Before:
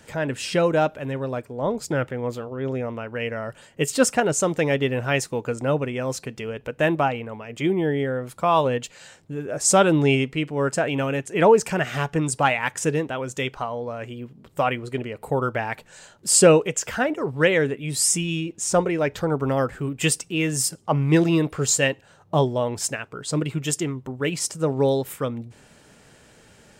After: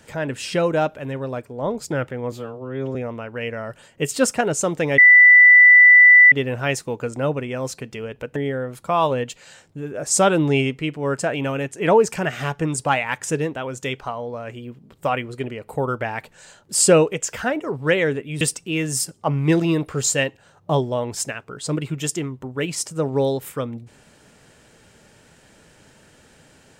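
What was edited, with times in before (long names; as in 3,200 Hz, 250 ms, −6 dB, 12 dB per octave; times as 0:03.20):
0:02.32–0:02.74: time-stretch 1.5×
0:04.77: insert tone 1,980 Hz −6 dBFS 1.34 s
0:06.81–0:07.90: remove
0:17.95–0:20.05: remove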